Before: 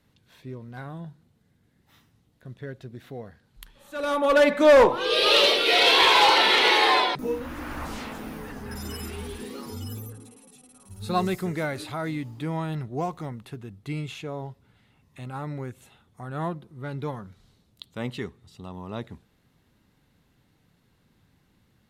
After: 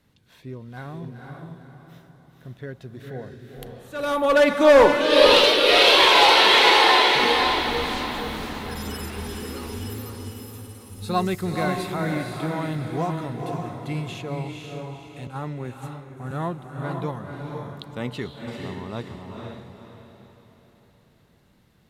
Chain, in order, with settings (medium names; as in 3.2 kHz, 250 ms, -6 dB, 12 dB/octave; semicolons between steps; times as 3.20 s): echo that smears into a reverb 493 ms, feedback 41%, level -3 dB; 15.27–16.31 s: three bands expanded up and down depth 100%; trim +1.5 dB